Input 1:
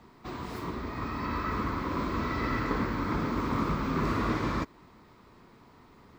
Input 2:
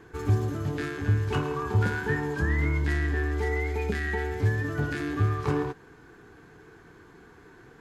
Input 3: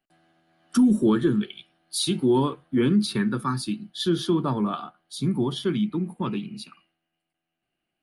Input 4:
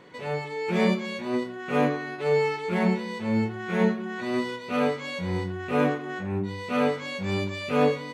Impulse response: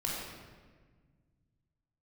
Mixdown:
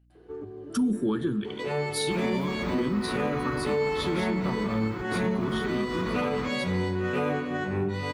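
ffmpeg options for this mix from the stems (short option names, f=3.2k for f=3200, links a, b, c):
-filter_complex "[0:a]alimiter=level_in=4dB:limit=-24dB:level=0:latency=1:release=141,volume=-4dB,adelay=1850,volume=3dB[a];[1:a]alimiter=limit=-24dB:level=0:latency=1:release=453,bandpass=f=410:t=q:w=2.2:csg=0,adelay=150,volume=1dB[b];[2:a]aeval=exprs='val(0)+0.00141*(sin(2*PI*60*n/s)+sin(2*PI*2*60*n/s)/2+sin(2*PI*3*60*n/s)/3+sin(2*PI*4*60*n/s)/4+sin(2*PI*5*60*n/s)/5)':c=same,volume=-4dB,asplit=3[c][d][e];[d]volume=-24dB[f];[3:a]adelay=1450,volume=1dB,asplit=3[g][h][i];[h]volume=-12dB[j];[i]volume=-14.5dB[k];[e]apad=whole_len=354420[l];[a][l]sidechaingate=range=-33dB:threshold=-56dB:ratio=16:detection=peak[m];[4:a]atrim=start_sample=2205[n];[f][j]amix=inputs=2:normalize=0[o];[o][n]afir=irnorm=-1:irlink=0[p];[k]aecho=0:1:846:1[q];[m][b][c][g][p][q]amix=inputs=6:normalize=0,alimiter=limit=-18.5dB:level=0:latency=1:release=241"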